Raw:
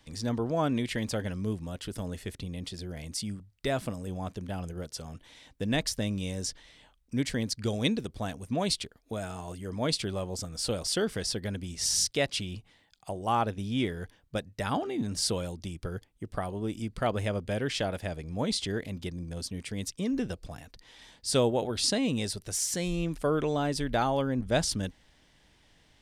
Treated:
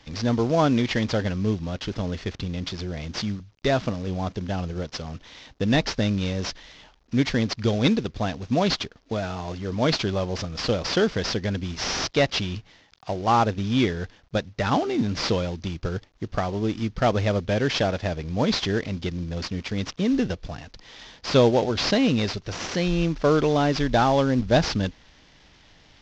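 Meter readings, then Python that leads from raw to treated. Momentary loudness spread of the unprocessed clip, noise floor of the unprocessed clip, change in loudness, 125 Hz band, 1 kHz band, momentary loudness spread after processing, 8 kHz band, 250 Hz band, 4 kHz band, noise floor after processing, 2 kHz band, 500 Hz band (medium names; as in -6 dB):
11 LU, -64 dBFS, +7.0 dB, +8.0 dB, +8.0 dB, 11 LU, -4.0 dB, +8.0 dB, +5.0 dB, -56 dBFS, +8.0 dB, +7.5 dB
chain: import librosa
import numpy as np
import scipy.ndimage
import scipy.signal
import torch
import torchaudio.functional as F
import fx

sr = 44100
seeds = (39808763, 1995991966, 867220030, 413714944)

y = fx.cvsd(x, sr, bps=32000)
y = y * librosa.db_to_amplitude(8.0)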